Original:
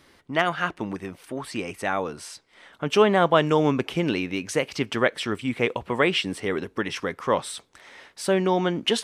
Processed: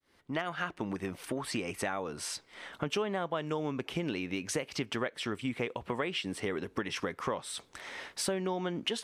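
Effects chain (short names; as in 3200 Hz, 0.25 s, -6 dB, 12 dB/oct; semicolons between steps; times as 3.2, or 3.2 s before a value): opening faded in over 0.69 s; compressor 6:1, threshold -35 dBFS, peak gain reduction 20.5 dB; gain +3.5 dB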